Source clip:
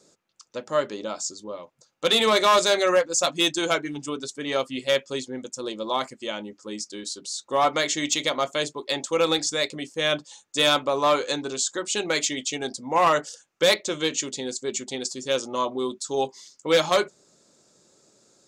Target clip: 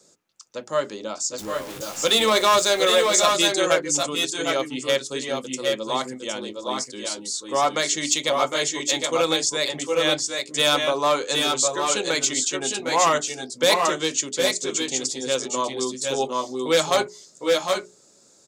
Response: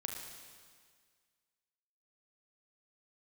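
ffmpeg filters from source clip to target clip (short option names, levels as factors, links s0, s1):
-filter_complex "[0:a]asettb=1/sr,asplit=3[s0][s1][s2];[s0]atrim=end=1.384[s3];[s1]atrim=start=1.38:end=2.56,asetpts=PTS-STARTPTS,afade=t=in:d=0.004:c=qsin,afade=t=out:st=1.176:d=0.004:c=qsin,aeval=exprs='val(0)+0.5*0.0211*sgn(val(0))':c=same[s4];[s2]atrim=start=2.556[s5];[s3][s4]acrossfade=d=0.004:c1=hsin:c2=qsin[s6];[s6][s5]acrossfade=d=0.004:c1=qsin:c2=hsin,bandreject=f=60:t=h:w=6,bandreject=f=120:t=h:w=6,bandreject=f=180:t=h:w=6,bandreject=f=240:t=h:w=6,bandreject=f=300:t=h:w=6,bandreject=f=360:t=h:w=6,bandreject=f=420:t=h:w=6,acrossover=split=260|5500[s7][s8][s9];[s9]acontrast=33[s10];[s7][s8][s10]amix=inputs=3:normalize=0,aecho=1:1:757|773:0.422|0.596"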